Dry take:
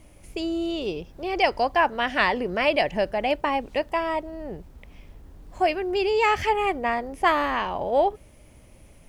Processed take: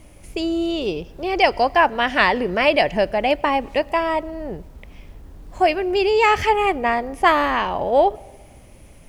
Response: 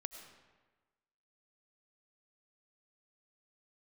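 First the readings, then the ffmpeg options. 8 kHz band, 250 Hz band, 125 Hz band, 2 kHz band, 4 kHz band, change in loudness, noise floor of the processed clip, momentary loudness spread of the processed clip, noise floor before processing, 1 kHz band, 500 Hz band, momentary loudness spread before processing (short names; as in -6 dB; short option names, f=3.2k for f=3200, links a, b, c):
n/a, +5.0 dB, +5.0 dB, +5.0 dB, +5.0 dB, +5.0 dB, -46 dBFS, 10 LU, -51 dBFS, +5.0 dB, +5.0 dB, 10 LU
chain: -filter_complex "[0:a]asplit=2[a][b];[1:a]atrim=start_sample=2205[c];[b][c]afir=irnorm=-1:irlink=0,volume=-13.5dB[d];[a][d]amix=inputs=2:normalize=0,volume=4dB"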